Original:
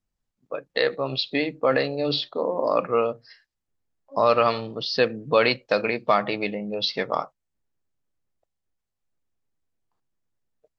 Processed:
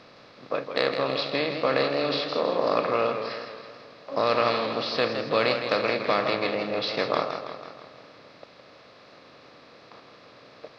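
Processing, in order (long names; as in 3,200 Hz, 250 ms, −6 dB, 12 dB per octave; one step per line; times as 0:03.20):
compressor on every frequency bin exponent 0.4
harmonic generator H 3 −28 dB, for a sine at 1 dBFS
feedback echo with a swinging delay time 163 ms, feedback 57%, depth 93 cents, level −8 dB
level −7.5 dB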